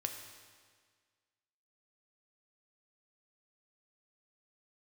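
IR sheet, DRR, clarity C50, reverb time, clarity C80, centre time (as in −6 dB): 4.0 dB, 6.0 dB, 1.7 s, 7.0 dB, 38 ms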